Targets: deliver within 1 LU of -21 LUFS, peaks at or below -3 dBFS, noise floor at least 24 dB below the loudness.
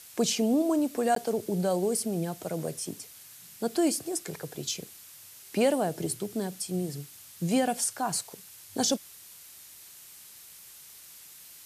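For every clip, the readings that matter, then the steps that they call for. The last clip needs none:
dropouts 1; longest dropout 13 ms; noise floor -50 dBFS; noise floor target -54 dBFS; loudness -29.5 LUFS; peak -13.5 dBFS; loudness target -21.0 LUFS
-> interpolate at 1.15, 13 ms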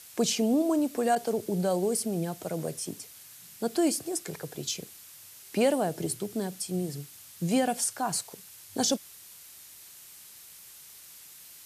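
dropouts 0; noise floor -50 dBFS; noise floor target -54 dBFS
-> noise print and reduce 6 dB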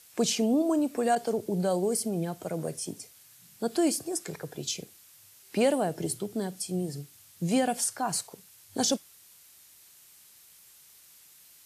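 noise floor -56 dBFS; loudness -29.5 LUFS; peak -13.5 dBFS; loudness target -21.0 LUFS
-> gain +8.5 dB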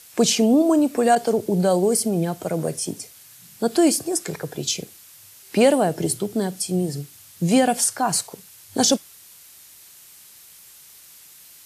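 loudness -21.0 LUFS; peak -5.0 dBFS; noise floor -48 dBFS

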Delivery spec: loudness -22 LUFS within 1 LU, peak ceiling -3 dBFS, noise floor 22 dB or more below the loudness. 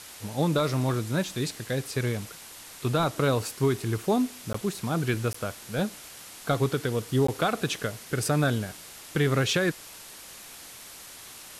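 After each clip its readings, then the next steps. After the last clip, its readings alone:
dropouts 3; longest dropout 14 ms; noise floor -45 dBFS; noise floor target -50 dBFS; loudness -28.0 LUFS; peak -14.5 dBFS; loudness target -22.0 LUFS
-> interpolate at 4.53/5.33/7.27, 14 ms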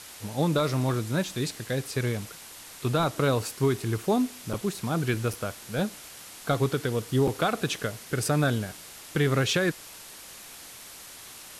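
dropouts 0; noise floor -45 dBFS; noise floor target -50 dBFS
-> denoiser 6 dB, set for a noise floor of -45 dBFS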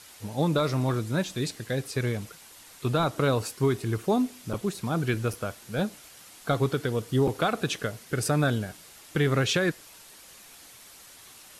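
noise floor -50 dBFS; loudness -28.0 LUFS; peak -14.5 dBFS; loudness target -22.0 LUFS
-> gain +6 dB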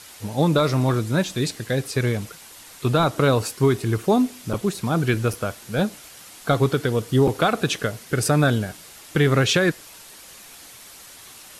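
loudness -22.0 LUFS; peak -8.5 dBFS; noise floor -44 dBFS

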